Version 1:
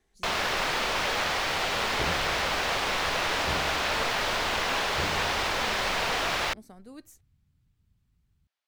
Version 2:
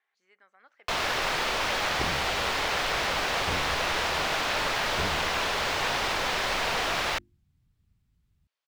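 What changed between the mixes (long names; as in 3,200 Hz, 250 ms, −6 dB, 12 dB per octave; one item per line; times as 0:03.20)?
speech: add flat-topped band-pass 1,600 Hz, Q 0.86
first sound: entry +0.65 s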